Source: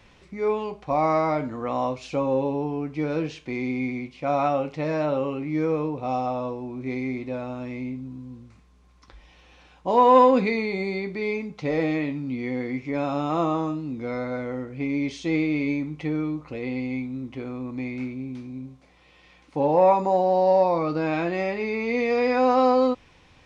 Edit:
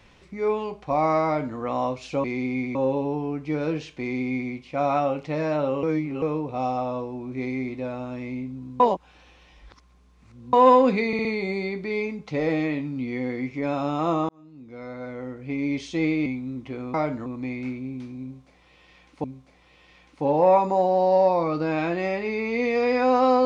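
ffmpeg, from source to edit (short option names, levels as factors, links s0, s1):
-filter_complex "[0:a]asplit=15[s0][s1][s2][s3][s4][s5][s6][s7][s8][s9][s10][s11][s12][s13][s14];[s0]atrim=end=2.242[s15];[s1]atrim=start=3.488:end=4.002[s16];[s2]atrim=start=2.238:end=5.322[s17];[s3]atrim=start=5.318:end=5.712,asetpts=PTS-STARTPTS,areverse[s18];[s4]atrim=start=5.708:end=8.292[s19];[s5]atrim=start=8.288:end=10.022,asetpts=PTS-STARTPTS,areverse[s20];[s6]atrim=start=10.018:end=10.622[s21];[s7]atrim=start=10.558:end=10.622[s22];[s8]atrim=start=10.558:end=10.622[s23];[s9]atrim=start=10.558:end=13.6,asetpts=PTS-STARTPTS,afade=t=out:st=3.038:d=0.004:c=hsin[s24];[s10]atrim=start=13.6:end=15.572,asetpts=PTS-STARTPTS,afade=t=in:d=1.44[s25];[s11]atrim=start=16.928:end=17.612[s26];[s12]atrim=start=1.258:end=1.582[s27];[s13]atrim=start=17.608:end=19.592[s28];[s14]atrim=start=18.588[s29];[s15][s16]acrossfade=d=0.004:c1=hsin:c2=hsin[s30];[s30][s17]acrossfade=d=0.004:c1=hsin:c2=hsin[s31];[s31][s18]acrossfade=d=0.004:c1=hsin:c2=hsin[s32];[s32][s19]acrossfade=d=0.004:c1=hsin:c2=hsin[s33];[s33][s20]acrossfade=d=0.004:c1=hsin:c2=hsin[s34];[s34][s21]acrossfade=d=0.004:c1=hsin:c2=hsin[s35];[s35][s22]acrossfade=d=0.004:c1=hsin:c2=hsin[s36];[s36][s23]acrossfade=d=0.004:c1=hsin:c2=hsin[s37];[s24][s25]concat=n=2:v=0:a=1[s38];[s37][s38]acrossfade=d=0.004:c1=hsin:c2=hsin[s39];[s39][s26]acrossfade=d=0.004:c1=hsin:c2=hsin[s40];[s40][s27]acrossfade=d=0.004:c1=hsin:c2=hsin[s41];[s41][s28]acrossfade=d=0.004:c1=hsin:c2=hsin[s42];[s42][s29]acrossfade=d=0.004:c1=hsin:c2=hsin"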